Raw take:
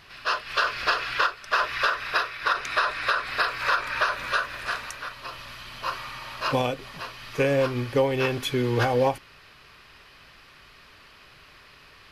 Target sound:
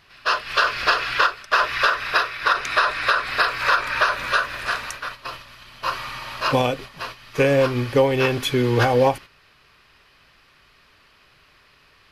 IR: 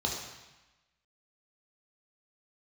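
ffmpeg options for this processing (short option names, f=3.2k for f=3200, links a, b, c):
-af "agate=range=-9dB:threshold=-39dB:ratio=16:detection=peak,volume=5dB"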